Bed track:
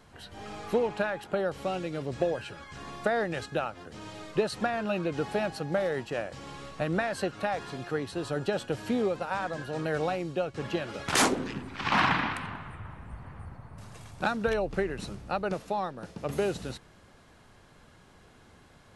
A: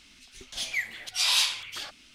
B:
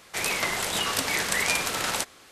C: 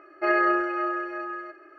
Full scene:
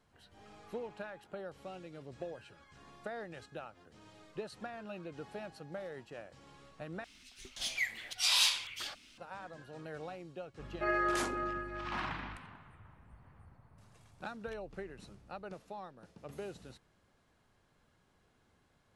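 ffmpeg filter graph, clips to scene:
ffmpeg -i bed.wav -i cue0.wav -i cue1.wav -i cue2.wav -filter_complex "[0:a]volume=-15dB[link_01];[3:a]aeval=exprs='val(0)+0.0126*(sin(2*PI*50*n/s)+sin(2*PI*2*50*n/s)/2+sin(2*PI*3*50*n/s)/3+sin(2*PI*4*50*n/s)/4+sin(2*PI*5*50*n/s)/5)':channel_layout=same[link_02];[link_01]asplit=2[link_03][link_04];[link_03]atrim=end=7.044[link_05];[1:a]atrim=end=2.14,asetpts=PTS-STARTPTS,volume=-4.5dB[link_06];[link_04]atrim=start=9.176[link_07];[link_02]atrim=end=1.78,asetpts=PTS-STARTPTS,volume=-10dB,afade=type=in:duration=0.004:curve=hsin,afade=type=out:start_time=1.776:duration=0.004:curve=hsin,adelay=10590[link_08];[link_05][link_06]acrossfade=duration=0.004:curve1=hsin:curve2=hsin[link_09];[link_09][link_07]acrossfade=duration=0.004:curve1=hsin:curve2=hsin[link_10];[link_10][link_08]amix=inputs=2:normalize=0" out.wav

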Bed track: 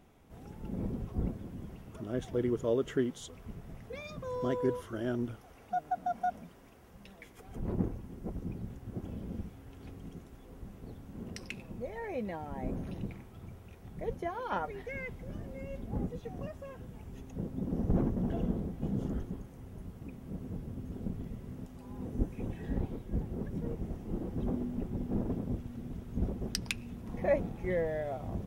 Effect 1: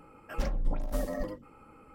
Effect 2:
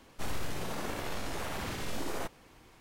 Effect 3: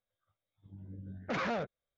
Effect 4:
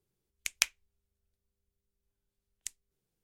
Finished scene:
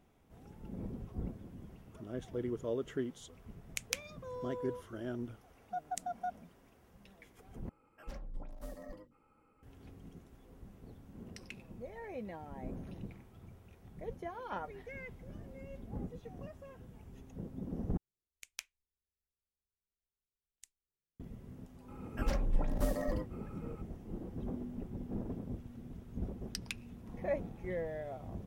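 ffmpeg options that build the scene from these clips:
ffmpeg -i bed.wav -i cue0.wav -i cue1.wav -i cue2.wav -i cue3.wav -filter_complex "[4:a]asplit=2[link_01][link_02];[1:a]asplit=2[link_03][link_04];[0:a]volume=-6.5dB[link_05];[link_01]alimiter=limit=-9dB:level=0:latency=1:release=221[link_06];[link_05]asplit=3[link_07][link_08][link_09];[link_07]atrim=end=7.694[link_10];[link_03]atrim=end=1.94,asetpts=PTS-STARTPTS,volume=-14.5dB[link_11];[link_08]atrim=start=9.626:end=17.974[link_12];[link_02]atrim=end=3.23,asetpts=PTS-STARTPTS,volume=-17dB[link_13];[link_09]atrim=start=21.196[link_14];[link_06]atrim=end=3.23,asetpts=PTS-STARTPTS,volume=-3.5dB,afade=type=in:duration=0.004:curve=hsin,afade=type=out:start_time=3.226:duration=0.004:curve=hsin,adelay=3310[link_15];[link_04]atrim=end=1.94,asetpts=PTS-STARTPTS,volume=-1.5dB,afade=type=in:duration=0.004:curve=hsin,afade=type=out:start_time=1.936:duration=0.004:curve=hsin,adelay=21880[link_16];[link_10][link_11]acrossfade=duration=0.004:curve1=hsin:curve2=hsin[link_17];[link_17][link_12]acrossfade=duration=0.004:curve1=hsin:curve2=hsin[link_18];[link_18][link_13]acrossfade=duration=0.004:curve1=hsin:curve2=hsin[link_19];[link_19][link_14]acrossfade=duration=0.004:curve1=hsin:curve2=hsin[link_20];[link_20][link_15][link_16]amix=inputs=3:normalize=0" out.wav

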